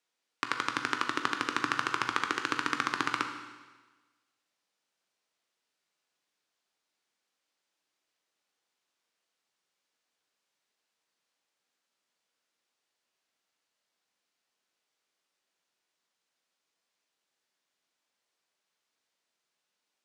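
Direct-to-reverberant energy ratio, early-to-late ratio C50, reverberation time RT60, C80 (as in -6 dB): 4.5 dB, 7.0 dB, 1.3 s, 8.5 dB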